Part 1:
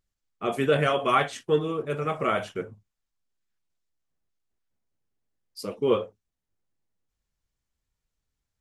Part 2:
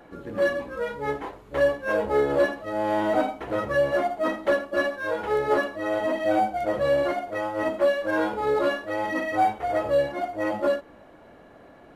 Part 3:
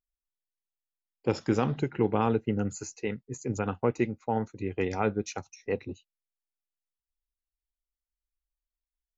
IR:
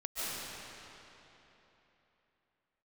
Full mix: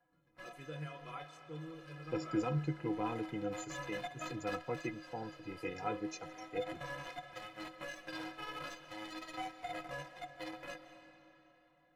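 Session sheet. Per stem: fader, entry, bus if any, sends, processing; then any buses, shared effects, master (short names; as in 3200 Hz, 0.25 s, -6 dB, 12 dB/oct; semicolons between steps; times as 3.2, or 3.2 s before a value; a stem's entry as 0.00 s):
-14.0 dB, 0.00 s, send -16 dB, dry
-1.0 dB, 0.00 s, send -13.5 dB, bell 380 Hz -12 dB 0.88 oct; limiter -22.5 dBFS, peak gain reduction 8 dB; added harmonics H 3 -8 dB, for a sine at -22.5 dBFS; auto duck -23 dB, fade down 1.05 s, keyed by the first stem
0.0 dB, 0.85 s, no send, dry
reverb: on, RT60 3.4 s, pre-delay 0.105 s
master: bell 3300 Hz -2 dB 0.23 oct; metallic resonator 150 Hz, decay 0.2 s, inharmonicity 0.03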